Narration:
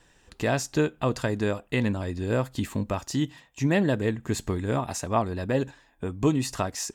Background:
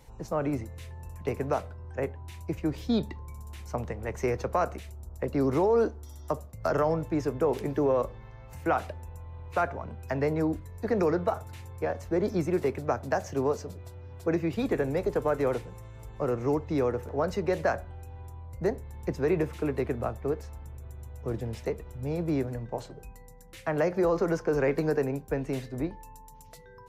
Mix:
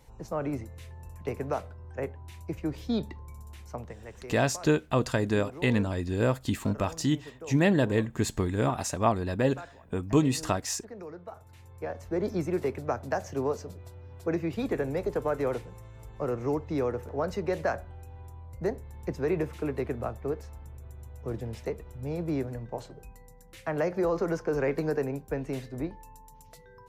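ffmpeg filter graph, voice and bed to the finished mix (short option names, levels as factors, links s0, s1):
-filter_complex "[0:a]adelay=3900,volume=1[s0];[1:a]volume=4.22,afade=t=out:st=3.42:d=0.87:silence=0.188365,afade=t=in:st=11.25:d=1:silence=0.177828[s1];[s0][s1]amix=inputs=2:normalize=0"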